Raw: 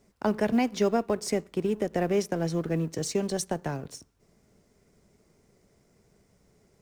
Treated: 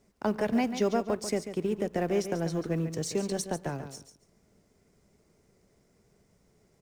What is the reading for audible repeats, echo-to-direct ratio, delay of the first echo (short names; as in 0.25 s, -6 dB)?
2, -10.0 dB, 0.141 s